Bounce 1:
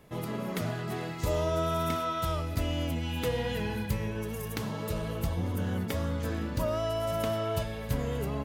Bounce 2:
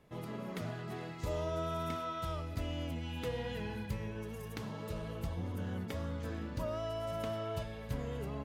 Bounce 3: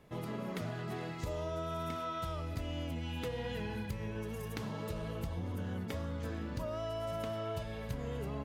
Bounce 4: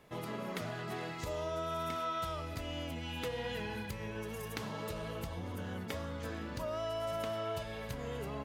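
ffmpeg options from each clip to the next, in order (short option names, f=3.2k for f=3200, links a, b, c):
-af "highshelf=f=9.2k:g=-10,volume=-7.5dB"
-af "acompressor=threshold=-38dB:ratio=6,volume=3.5dB"
-af "lowshelf=f=370:g=-8,volume=3.5dB"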